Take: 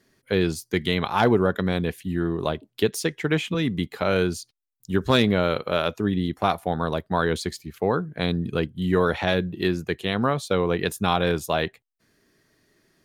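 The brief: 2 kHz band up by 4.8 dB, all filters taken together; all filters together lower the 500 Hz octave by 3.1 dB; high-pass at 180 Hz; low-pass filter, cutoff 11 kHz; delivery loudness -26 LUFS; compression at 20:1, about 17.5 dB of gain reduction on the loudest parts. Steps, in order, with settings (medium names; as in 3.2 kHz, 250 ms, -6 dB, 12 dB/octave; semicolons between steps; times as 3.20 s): high-pass 180 Hz; low-pass 11 kHz; peaking EQ 500 Hz -4 dB; peaking EQ 2 kHz +6.5 dB; compression 20:1, threshold -33 dBFS; trim +13 dB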